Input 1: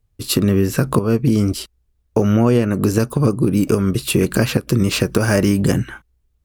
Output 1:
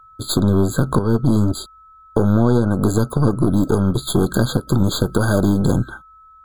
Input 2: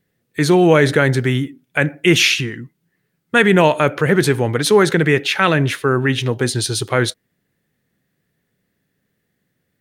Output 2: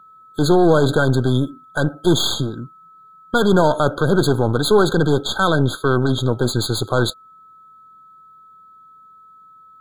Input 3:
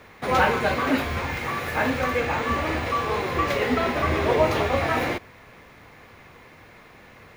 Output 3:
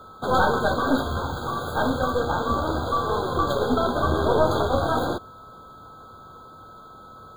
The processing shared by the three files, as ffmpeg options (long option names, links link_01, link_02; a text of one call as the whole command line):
ffmpeg -i in.wav -filter_complex "[0:a]aeval=exprs='val(0)+0.00562*sin(2*PI*1300*n/s)':channel_layout=same,aeval=exprs='0.944*(cos(1*acos(clip(val(0)/0.944,-1,1)))-cos(1*PI/2))+0.0841*(cos(8*acos(clip(val(0)/0.944,-1,1)))-cos(8*PI/2))':channel_layout=same,asplit=2[link_01][link_02];[link_02]alimiter=limit=-10.5dB:level=0:latency=1:release=11,volume=1dB[link_03];[link_01][link_03]amix=inputs=2:normalize=0,afftfilt=real='re*eq(mod(floor(b*sr/1024/1600),2),0)':imag='im*eq(mod(floor(b*sr/1024/1600),2),0)':win_size=1024:overlap=0.75,volume=-5.5dB" out.wav